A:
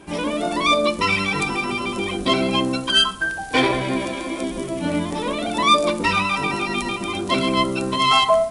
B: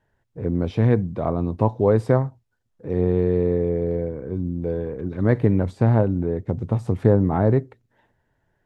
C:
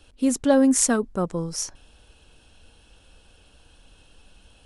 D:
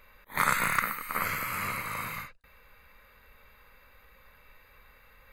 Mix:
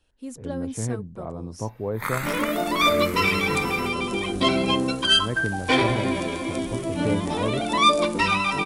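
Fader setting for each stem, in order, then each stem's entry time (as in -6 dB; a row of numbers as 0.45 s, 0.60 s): -2.0 dB, -11.0 dB, -15.0 dB, -3.0 dB; 2.15 s, 0.00 s, 0.00 s, 1.65 s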